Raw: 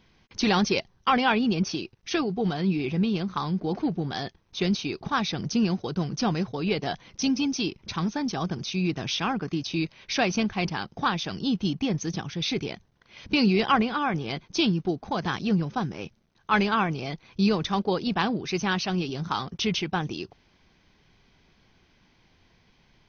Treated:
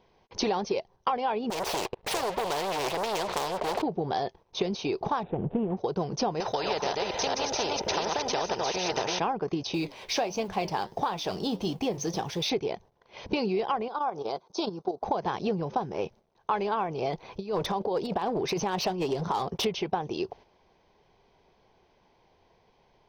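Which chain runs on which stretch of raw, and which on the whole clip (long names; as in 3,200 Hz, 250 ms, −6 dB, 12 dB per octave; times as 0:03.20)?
0:01.50–0:03.82: low-pass filter 3,800 Hz 24 dB per octave + leveller curve on the samples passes 3 + every bin compressed towards the loudest bin 4 to 1
0:05.23–0:05.77: running median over 41 samples + Butterworth low-pass 3,400 Hz 72 dB per octave + spectral tilt −1.5 dB per octave
0:06.40–0:09.19: delay that plays each chunk backwards 236 ms, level −4.5 dB + notch comb filter 1,100 Hz + every bin compressed towards the loudest bin 4 to 1
0:09.74–0:12.50: mu-law and A-law mismatch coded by mu + high-shelf EQ 3,900 Hz +7 dB + flanger 1.5 Hz, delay 6.1 ms, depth 5.4 ms, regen −75%
0:13.88–0:15.02: high-pass filter 560 Hz 6 dB per octave + flat-topped bell 2,300 Hz −11 dB 1.1 octaves + output level in coarse steps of 10 dB
0:17.13–0:19.65: compressor whose output falls as the input rises −28 dBFS, ratio −0.5 + hard clipping −24.5 dBFS
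whole clip: flat-topped bell 620 Hz +12.5 dB; downward compressor 10 to 1, threshold −25 dBFS; noise gate −49 dBFS, range −7 dB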